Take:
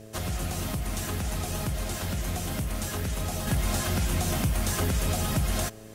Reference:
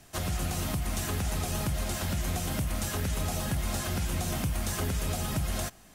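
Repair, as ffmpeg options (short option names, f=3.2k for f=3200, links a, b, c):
-af "bandreject=f=108.9:t=h:w=4,bandreject=f=217.8:t=h:w=4,bandreject=f=326.7:t=h:w=4,bandreject=f=435.6:t=h:w=4,bandreject=f=544.5:t=h:w=4,bandreject=f=653.4:t=h:w=4,bandreject=f=410:w=30,asetnsamples=n=441:p=0,asendcmd='3.47 volume volume -4dB',volume=0dB"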